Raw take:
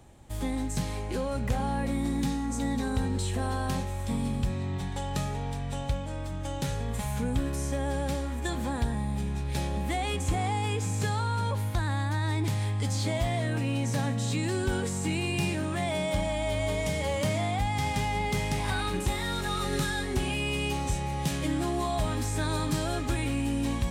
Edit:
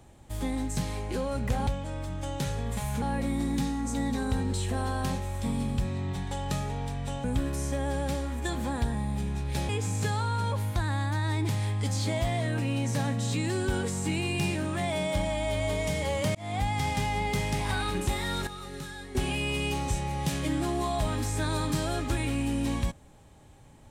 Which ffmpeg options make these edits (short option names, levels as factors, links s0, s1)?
-filter_complex "[0:a]asplit=8[s0][s1][s2][s3][s4][s5][s6][s7];[s0]atrim=end=1.672[s8];[s1]atrim=start=5.888:end=7.242[s9];[s2]atrim=start=1.668:end=5.892[s10];[s3]atrim=start=7.238:end=9.692[s11];[s4]atrim=start=10.678:end=17.34,asetpts=PTS-STARTPTS,afade=t=out:st=6.658:d=0.004:c=hsin[s12];[s5]atrim=start=17.34:end=19.462,asetpts=PTS-STARTPTS,afade=t=in:d=0.25[s13];[s6]atrim=start=19.458:end=20.142,asetpts=PTS-STARTPTS,volume=0.299[s14];[s7]atrim=start=20.138[s15];[s8][s9]acrossfade=d=0.004:c1=hsin:c2=hsin[s16];[s16][s10]acrossfade=d=0.004:c1=hsin:c2=hsin[s17];[s17][s11]acrossfade=d=0.004:c1=hsin:c2=hsin[s18];[s12][s13]concat=n=2:v=0:a=1[s19];[s18][s19]acrossfade=d=0.004:c1=hsin:c2=hsin[s20];[s20][s14]acrossfade=d=0.004:c1=hsin:c2=hsin[s21];[s21][s15]acrossfade=d=0.004:c1=hsin:c2=hsin"